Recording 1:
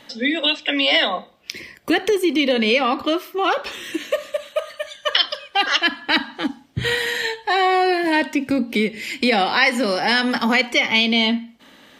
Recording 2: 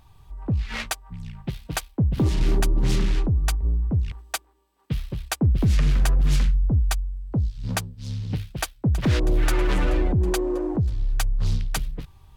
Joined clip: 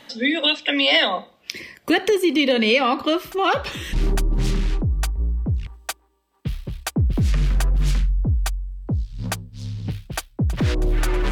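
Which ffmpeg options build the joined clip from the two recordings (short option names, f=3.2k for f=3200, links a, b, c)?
-filter_complex "[1:a]asplit=2[a][b];[0:a]apad=whole_dur=11.31,atrim=end=11.31,atrim=end=3.932[c];[b]atrim=start=2.378:end=9.76[d];[a]atrim=start=1.61:end=2.38,asetpts=PTS-STARTPTS,volume=-15dB,afade=t=in:d=0.004:c=hsin,afade=t=out:st=0.766:d=0.004:c=hsin,adelay=3160[e];[c][d]acrossfade=d=0.004:c1=hsin:c2=hsin[f];[f][e]amix=inputs=2:normalize=0"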